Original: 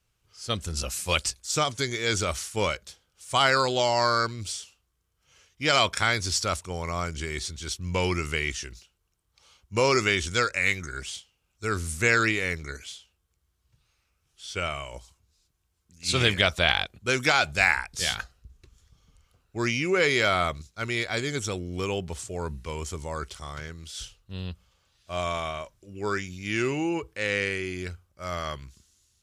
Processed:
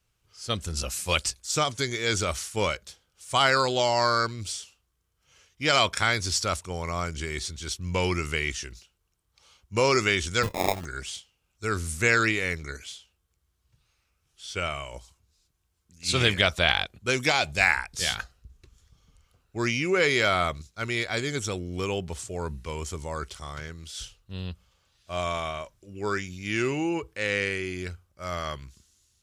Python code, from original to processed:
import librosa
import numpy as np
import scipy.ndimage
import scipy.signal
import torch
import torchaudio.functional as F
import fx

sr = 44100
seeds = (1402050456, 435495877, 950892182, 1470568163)

y = fx.sample_hold(x, sr, seeds[0], rate_hz=1500.0, jitter_pct=0, at=(10.42, 10.84), fade=0.02)
y = fx.peak_eq(y, sr, hz=1400.0, db=-8.5, octaves=0.35, at=(17.11, 17.61))